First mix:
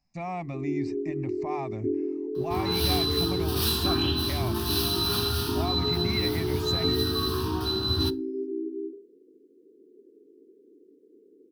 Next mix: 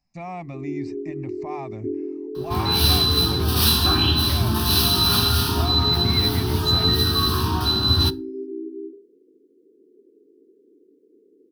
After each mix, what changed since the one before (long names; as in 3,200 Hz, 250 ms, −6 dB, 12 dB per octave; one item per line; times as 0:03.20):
second sound +8.5 dB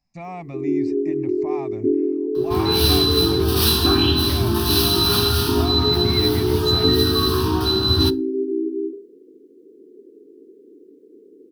first sound +9.0 dB